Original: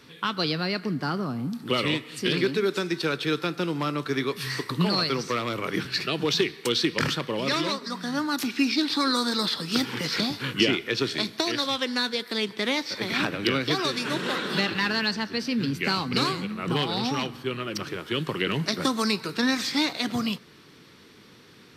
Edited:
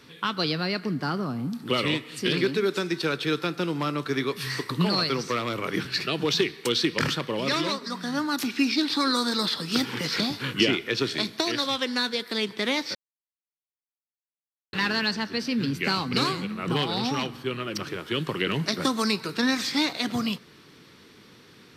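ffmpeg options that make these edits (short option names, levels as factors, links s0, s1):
-filter_complex "[0:a]asplit=3[s0][s1][s2];[s0]atrim=end=12.95,asetpts=PTS-STARTPTS,afade=t=out:st=12.946:d=0.004:c=hsin[s3];[s1]atrim=start=12.95:end=14.73,asetpts=PTS-STARTPTS,volume=0[s4];[s2]atrim=start=14.73,asetpts=PTS-STARTPTS,afade=t=in:d=0.004:c=hsin[s5];[s3][s4][s5]concat=n=3:v=0:a=1"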